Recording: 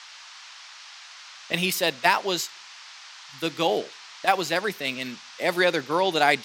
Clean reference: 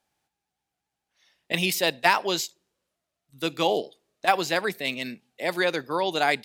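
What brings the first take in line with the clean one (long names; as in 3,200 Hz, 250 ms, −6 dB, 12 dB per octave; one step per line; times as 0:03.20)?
noise reduction from a noise print 30 dB
level 0 dB, from 0:05.33 −3 dB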